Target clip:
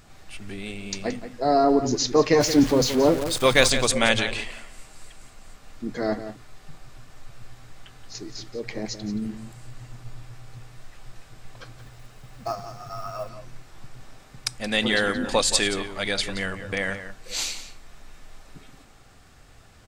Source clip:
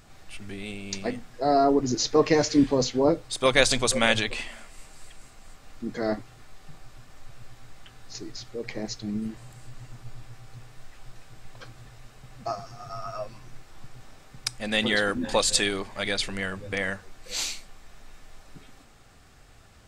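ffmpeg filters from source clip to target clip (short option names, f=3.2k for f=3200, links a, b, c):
-filter_complex "[0:a]asettb=1/sr,asplit=3[a][b][c];[a]atrim=end=2.404[d];[b]atrim=start=2.4:end=3.7,asetpts=PTS-STARTPTS,afade=t=in:d=0.004:c=qsin,afade=t=out:st=1.296:d=0.004:c=qsin,aeval=exprs='val(0)+0.5*0.0355*sgn(val(0))':c=same[e];[c]atrim=start=3.696[f];[d][e]acrossfade=d=0.004:c1=hsin:c2=qsin[g];[g][f]acrossfade=d=0.004:c1=qsin:c2=hsin,asplit=2[h][i];[i]adelay=174.9,volume=-11dB,highshelf=f=4k:g=-3.94[j];[h][j]amix=inputs=2:normalize=0,asettb=1/sr,asplit=3[k][l][m];[k]atrim=end=11.784[n];[l]atrim=start=11.78:end=13.29,asetpts=PTS-STARTPTS,afade=t=in:d=0.004:c=qsin,afade=t=out:st=1.506:d=0.004:c=qsin,acrusher=bits=6:mode=log:mix=0:aa=0.000001[o];[m]atrim=start=13.286[p];[n][o]acrossfade=d=0.004:c1=hsin:c2=qsin[q];[q][p]acrossfade=d=0.004:c1=qsin:c2=hsin,volume=1.5dB"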